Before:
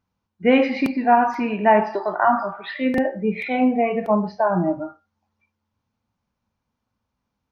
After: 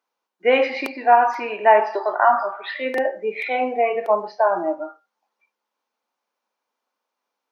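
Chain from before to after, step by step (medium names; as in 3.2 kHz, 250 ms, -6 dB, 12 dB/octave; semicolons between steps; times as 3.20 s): high-pass 390 Hz 24 dB/octave; trim +2 dB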